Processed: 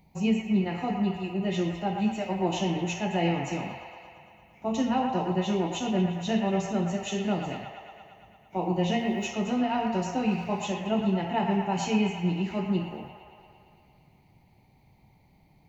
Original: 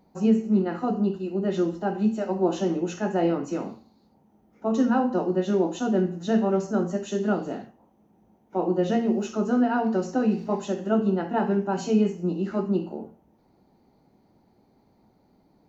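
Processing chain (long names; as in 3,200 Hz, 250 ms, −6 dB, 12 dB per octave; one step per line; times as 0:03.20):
drawn EQ curve 150 Hz 0 dB, 220 Hz −13 dB, 470 Hz −15 dB, 890 Hz −8 dB, 1,500 Hz −20 dB, 2,200 Hz +4 dB, 4,700 Hz −8 dB, 6,900 Hz −5 dB, 10,000 Hz −2 dB
on a send: delay with a band-pass on its return 114 ms, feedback 74%, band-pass 1,400 Hz, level −4.5 dB
on the sum: level +8 dB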